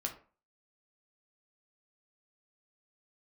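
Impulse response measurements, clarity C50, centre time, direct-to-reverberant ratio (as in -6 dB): 11.0 dB, 14 ms, 1.5 dB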